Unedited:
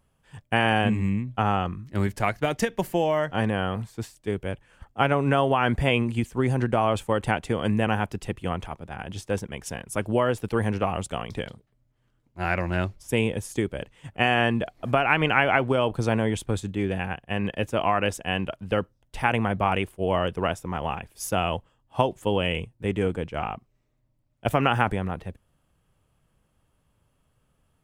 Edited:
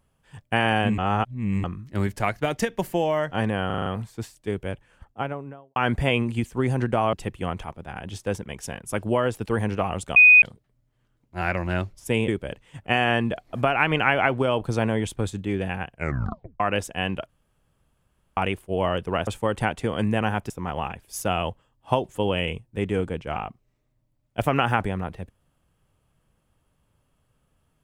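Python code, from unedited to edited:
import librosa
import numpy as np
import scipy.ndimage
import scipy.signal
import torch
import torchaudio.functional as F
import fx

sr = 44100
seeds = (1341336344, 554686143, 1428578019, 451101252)

y = fx.studio_fade_out(x, sr, start_s=4.52, length_s=1.04)
y = fx.edit(y, sr, fx.reverse_span(start_s=0.98, length_s=0.66),
    fx.stutter(start_s=3.66, slice_s=0.04, count=6),
    fx.move(start_s=6.93, length_s=1.23, to_s=20.57),
    fx.bleep(start_s=11.19, length_s=0.26, hz=2490.0, db=-8.5),
    fx.cut(start_s=13.31, length_s=0.27),
    fx.tape_stop(start_s=17.21, length_s=0.69),
    fx.room_tone_fill(start_s=18.59, length_s=1.08), tone=tone)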